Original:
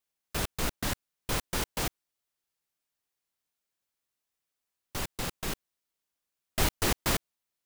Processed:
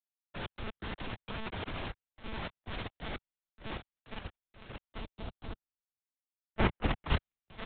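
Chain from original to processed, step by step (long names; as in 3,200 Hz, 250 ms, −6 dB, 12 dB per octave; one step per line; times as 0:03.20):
delay with pitch and tempo change per echo 506 ms, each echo −6 semitones, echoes 2
one-pitch LPC vocoder at 8 kHz 220 Hz
output level in coarse steps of 9 dB
0:04.99–0:07.08: parametric band 1,600 Hz → 5,600 Hz −8 dB 1.3 octaves
multiband upward and downward expander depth 70%
level −2 dB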